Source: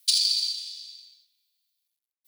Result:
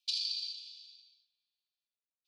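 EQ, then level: brick-wall FIR high-pass 2300 Hz; air absorption 210 m; -4.0 dB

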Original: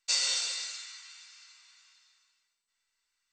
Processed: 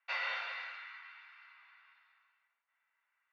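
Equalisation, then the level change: HPF 660 Hz 24 dB/oct; LPF 2200 Hz 24 dB/oct; air absorption 120 m; +7.5 dB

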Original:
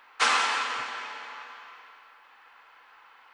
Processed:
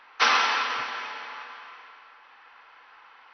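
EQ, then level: brick-wall FIR low-pass 6100 Hz; +2.5 dB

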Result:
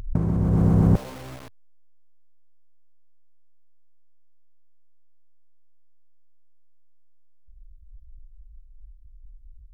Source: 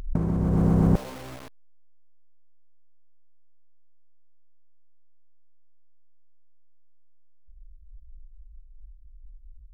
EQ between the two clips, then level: bell 99 Hz +7 dB; 0.0 dB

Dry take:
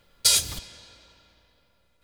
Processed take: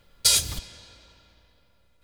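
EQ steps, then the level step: low shelf 140 Hz +5.5 dB; 0.0 dB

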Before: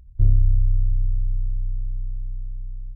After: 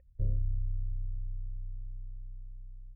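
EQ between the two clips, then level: dynamic EQ 170 Hz, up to +4 dB, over -40 dBFS, Q 1.4; vocal tract filter e; +5.5 dB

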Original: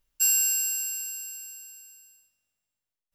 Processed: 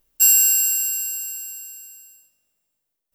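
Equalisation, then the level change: bell 370 Hz +8.5 dB 2.2 oct; high shelf 10000 Hz +11.5 dB; +3.5 dB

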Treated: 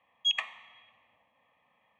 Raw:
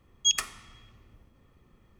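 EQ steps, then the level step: BPF 620–3600 Hz; air absorption 91 m; fixed phaser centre 1400 Hz, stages 6; +5.5 dB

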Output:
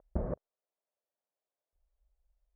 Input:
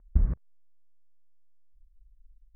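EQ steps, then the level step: band-pass 590 Hz, Q 3.2; +17.5 dB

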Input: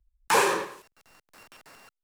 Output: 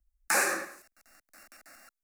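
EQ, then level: tilt shelf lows -3.5 dB, about 1400 Hz; fixed phaser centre 650 Hz, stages 8; 0.0 dB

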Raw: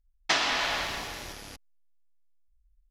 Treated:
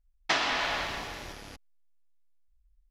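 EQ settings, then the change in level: high shelf 4900 Hz -8.5 dB; 0.0 dB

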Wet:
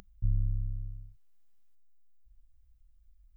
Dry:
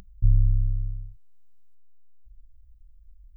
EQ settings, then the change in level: low shelf 210 Hz -10.5 dB; 0.0 dB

